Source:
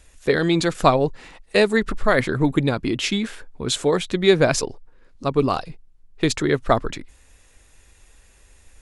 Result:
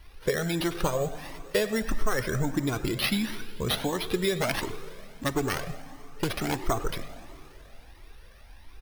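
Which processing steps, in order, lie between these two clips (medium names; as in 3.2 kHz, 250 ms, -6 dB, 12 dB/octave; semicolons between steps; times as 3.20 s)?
4.37–6.70 s: self-modulated delay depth 0.55 ms; compression, threshold -22 dBFS, peak gain reduction 12 dB; plate-style reverb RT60 3.1 s, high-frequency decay 0.9×, DRR 12 dB; careless resampling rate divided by 6×, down none, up hold; speakerphone echo 100 ms, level -14 dB; Shepard-style flanger rising 1.5 Hz; trim +3.5 dB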